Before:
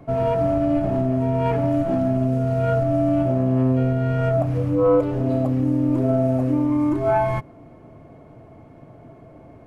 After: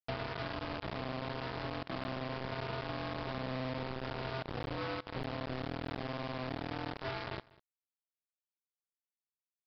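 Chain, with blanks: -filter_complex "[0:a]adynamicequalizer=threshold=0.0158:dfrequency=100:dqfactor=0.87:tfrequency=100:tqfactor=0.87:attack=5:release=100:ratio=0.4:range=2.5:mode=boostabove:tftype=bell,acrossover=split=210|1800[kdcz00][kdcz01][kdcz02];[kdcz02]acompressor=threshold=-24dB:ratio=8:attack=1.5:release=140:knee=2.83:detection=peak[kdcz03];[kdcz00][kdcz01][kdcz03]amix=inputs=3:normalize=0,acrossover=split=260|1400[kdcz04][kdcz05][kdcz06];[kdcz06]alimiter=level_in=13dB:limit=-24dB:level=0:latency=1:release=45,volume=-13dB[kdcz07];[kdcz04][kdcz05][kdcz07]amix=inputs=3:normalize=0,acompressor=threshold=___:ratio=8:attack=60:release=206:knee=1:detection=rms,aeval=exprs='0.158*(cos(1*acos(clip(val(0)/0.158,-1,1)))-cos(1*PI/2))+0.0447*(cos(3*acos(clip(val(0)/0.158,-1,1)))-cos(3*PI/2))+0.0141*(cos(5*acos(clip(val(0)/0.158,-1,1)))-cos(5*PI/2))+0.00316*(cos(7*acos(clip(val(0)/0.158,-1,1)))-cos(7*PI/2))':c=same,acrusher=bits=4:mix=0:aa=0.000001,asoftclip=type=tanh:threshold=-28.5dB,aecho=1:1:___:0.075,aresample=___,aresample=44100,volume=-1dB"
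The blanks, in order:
-27dB, 197, 11025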